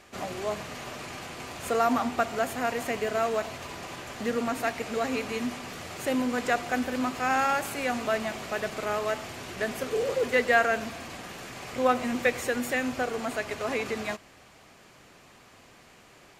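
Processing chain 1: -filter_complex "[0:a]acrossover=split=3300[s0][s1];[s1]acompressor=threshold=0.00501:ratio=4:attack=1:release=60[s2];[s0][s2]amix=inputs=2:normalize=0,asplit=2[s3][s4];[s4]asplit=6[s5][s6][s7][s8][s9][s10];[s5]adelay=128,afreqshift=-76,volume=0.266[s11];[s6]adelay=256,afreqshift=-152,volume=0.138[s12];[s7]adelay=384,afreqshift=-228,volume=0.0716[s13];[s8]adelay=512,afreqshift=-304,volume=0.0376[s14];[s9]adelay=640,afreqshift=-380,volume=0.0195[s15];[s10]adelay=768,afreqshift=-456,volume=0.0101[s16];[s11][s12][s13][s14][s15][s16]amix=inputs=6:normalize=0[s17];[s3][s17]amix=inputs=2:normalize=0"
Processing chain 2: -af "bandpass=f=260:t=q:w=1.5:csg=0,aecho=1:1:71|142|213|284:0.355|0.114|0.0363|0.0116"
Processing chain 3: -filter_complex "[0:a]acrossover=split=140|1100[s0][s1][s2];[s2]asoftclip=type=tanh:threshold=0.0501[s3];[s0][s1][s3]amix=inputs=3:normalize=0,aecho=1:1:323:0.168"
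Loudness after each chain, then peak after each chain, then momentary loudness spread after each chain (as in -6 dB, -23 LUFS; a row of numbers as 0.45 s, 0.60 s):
-29.0 LUFS, -35.0 LUFS, -30.0 LUFS; -9.5 dBFS, -19.0 dBFS, -12.0 dBFS; 13 LU, 17 LU, 12 LU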